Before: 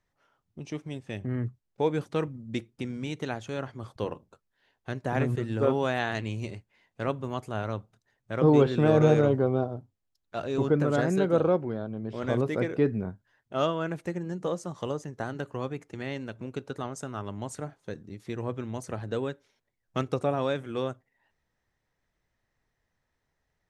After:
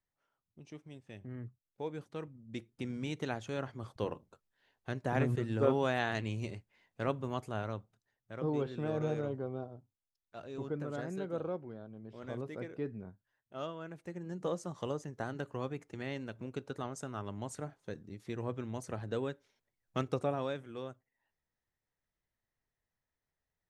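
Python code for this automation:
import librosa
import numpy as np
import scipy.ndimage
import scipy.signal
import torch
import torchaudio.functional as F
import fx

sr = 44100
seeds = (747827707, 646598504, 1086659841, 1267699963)

y = fx.gain(x, sr, db=fx.line((2.34, -13.5), (2.91, -4.0), (7.43, -4.0), (8.49, -14.0), (13.95, -14.0), (14.45, -5.0), (20.18, -5.0), (20.78, -12.0)))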